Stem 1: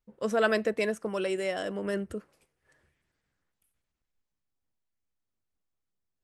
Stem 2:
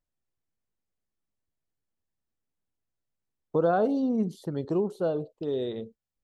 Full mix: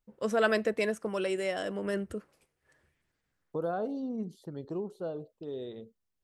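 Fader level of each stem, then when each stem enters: −1.0, −9.0 decibels; 0.00, 0.00 seconds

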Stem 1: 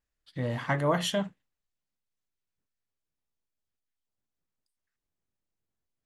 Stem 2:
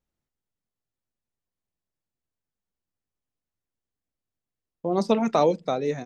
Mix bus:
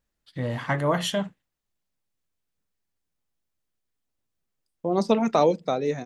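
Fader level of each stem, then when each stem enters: +2.5, +0.5 decibels; 0.00, 0.00 seconds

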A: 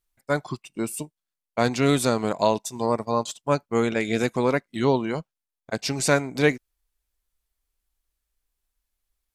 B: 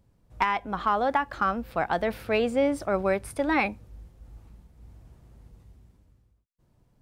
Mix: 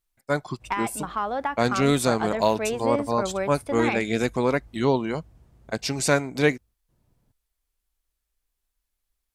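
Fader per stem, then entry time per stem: −0.5, −3.0 decibels; 0.00, 0.30 seconds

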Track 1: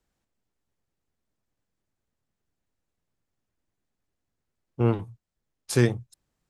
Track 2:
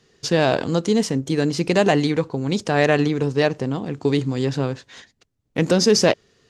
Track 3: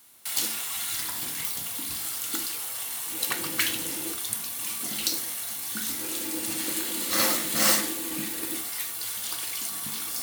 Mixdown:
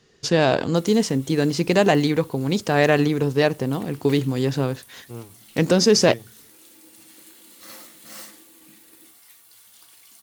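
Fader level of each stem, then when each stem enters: −14.5, 0.0, −18.5 decibels; 0.30, 0.00, 0.50 seconds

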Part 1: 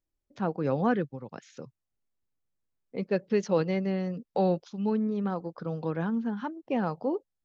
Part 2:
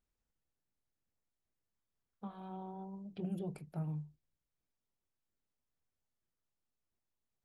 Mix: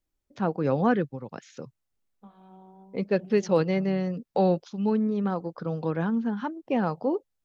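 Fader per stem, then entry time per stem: +3.0, −5.0 decibels; 0.00, 0.00 seconds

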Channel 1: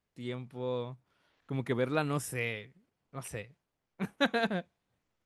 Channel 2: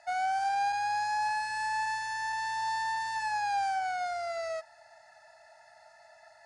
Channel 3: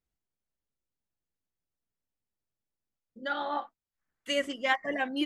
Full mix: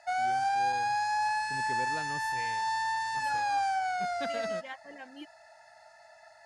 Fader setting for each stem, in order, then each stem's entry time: −11.5, +1.0, −16.0 decibels; 0.00, 0.00, 0.00 seconds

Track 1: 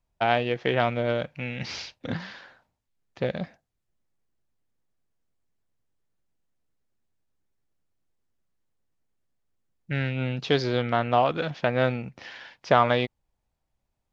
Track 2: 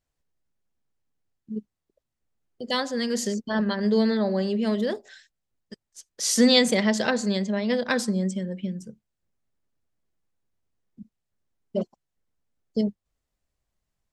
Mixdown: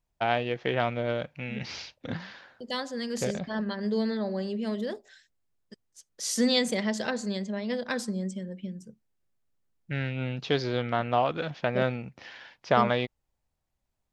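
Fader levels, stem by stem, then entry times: −3.5, −6.5 decibels; 0.00, 0.00 seconds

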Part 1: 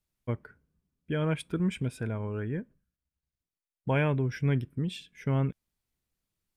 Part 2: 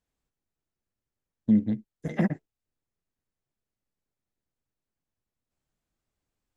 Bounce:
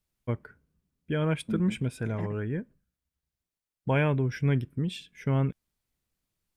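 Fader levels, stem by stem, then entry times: +1.5, −11.5 decibels; 0.00, 0.00 seconds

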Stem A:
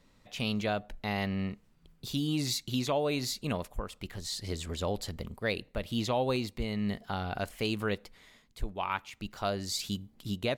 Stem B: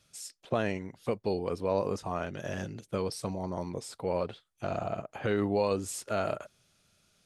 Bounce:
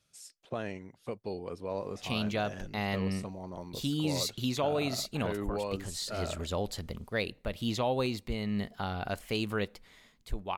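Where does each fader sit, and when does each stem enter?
−0.5, −7.0 decibels; 1.70, 0.00 seconds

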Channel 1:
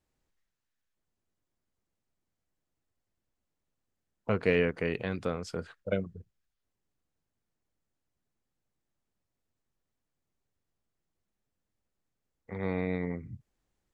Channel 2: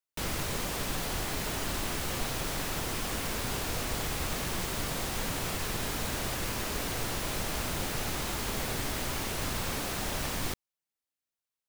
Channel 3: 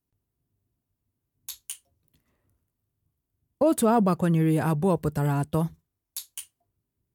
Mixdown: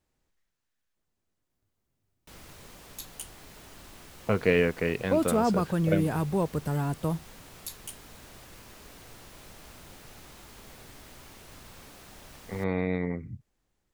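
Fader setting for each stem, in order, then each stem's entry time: +3.0, −16.0, −4.0 decibels; 0.00, 2.10, 1.50 seconds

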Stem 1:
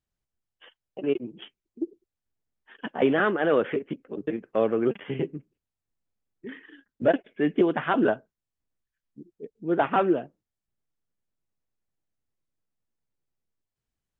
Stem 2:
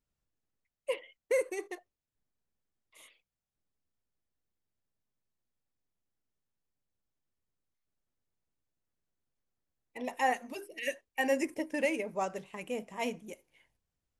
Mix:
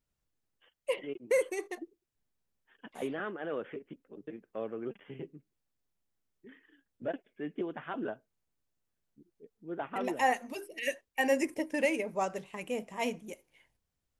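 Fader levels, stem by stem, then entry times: −14.5, +1.5 decibels; 0.00, 0.00 seconds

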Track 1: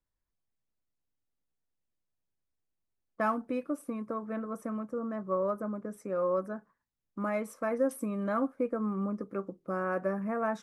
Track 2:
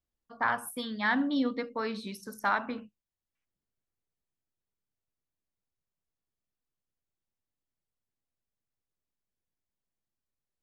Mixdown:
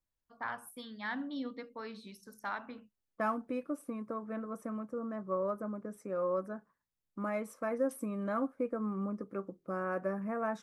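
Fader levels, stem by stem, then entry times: −3.5, −10.5 decibels; 0.00, 0.00 seconds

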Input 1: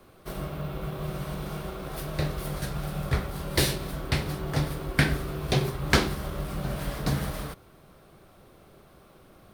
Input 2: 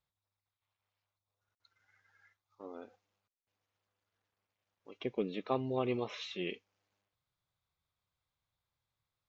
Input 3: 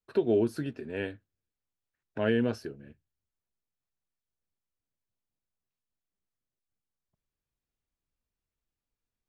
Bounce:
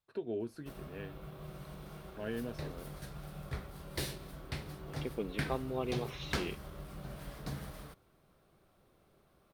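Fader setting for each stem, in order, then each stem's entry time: −14.0, −3.0, −12.5 decibels; 0.40, 0.00, 0.00 seconds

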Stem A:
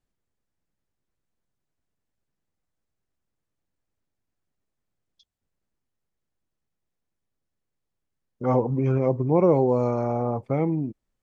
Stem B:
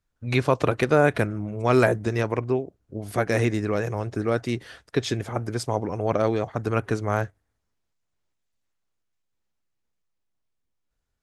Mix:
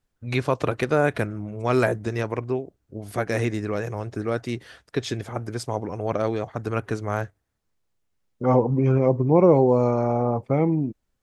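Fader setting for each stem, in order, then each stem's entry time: +3.0, −2.0 decibels; 0.00, 0.00 seconds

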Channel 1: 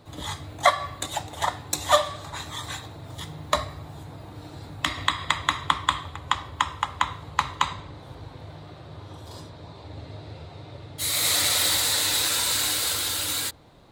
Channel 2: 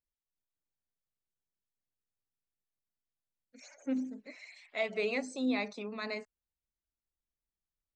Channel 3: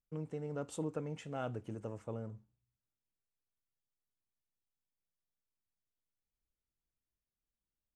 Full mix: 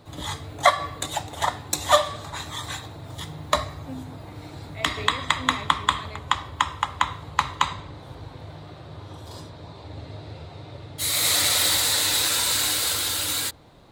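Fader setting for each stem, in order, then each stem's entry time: +1.5, −4.5, −7.5 decibels; 0.00, 0.00, 0.00 seconds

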